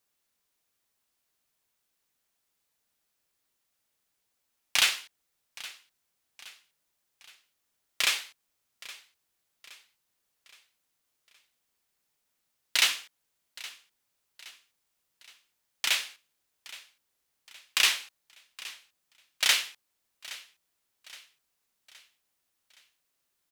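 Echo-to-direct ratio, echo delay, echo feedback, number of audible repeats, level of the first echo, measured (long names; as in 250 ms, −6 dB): −17.5 dB, 819 ms, 48%, 3, −18.5 dB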